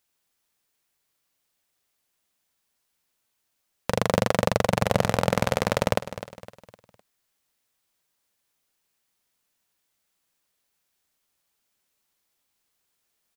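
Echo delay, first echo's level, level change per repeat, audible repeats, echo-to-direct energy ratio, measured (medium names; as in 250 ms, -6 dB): 255 ms, -13.5 dB, -7.5 dB, 3, -12.5 dB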